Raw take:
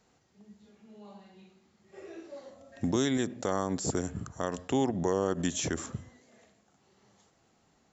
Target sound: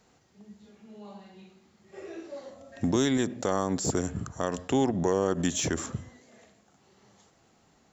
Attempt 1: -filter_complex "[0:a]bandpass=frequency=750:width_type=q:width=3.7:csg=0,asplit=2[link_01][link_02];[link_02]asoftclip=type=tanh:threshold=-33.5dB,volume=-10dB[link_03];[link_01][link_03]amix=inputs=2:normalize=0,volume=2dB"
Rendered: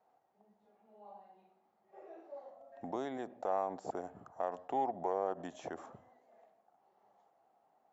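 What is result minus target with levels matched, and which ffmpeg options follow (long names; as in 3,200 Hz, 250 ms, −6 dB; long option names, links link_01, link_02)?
1,000 Hz band +8.5 dB
-filter_complex "[0:a]asplit=2[link_01][link_02];[link_02]asoftclip=type=tanh:threshold=-33.5dB,volume=-10dB[link_03];[link_01][link_03]amix=inputs=2:normalize=0,volume=2dB"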